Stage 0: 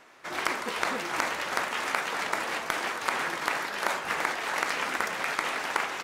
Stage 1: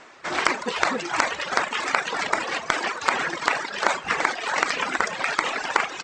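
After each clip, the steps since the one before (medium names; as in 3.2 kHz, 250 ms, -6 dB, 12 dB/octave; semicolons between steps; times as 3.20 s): Chebyshev low-pass 8 kHz, order 5; reverb removal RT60 1.8 s; trim +8.5 dB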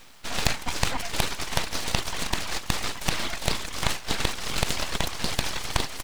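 word length cut 10-bit, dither none; static phaser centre 380 Hz, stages 4; full-wave rectifier; trim +3.5 dB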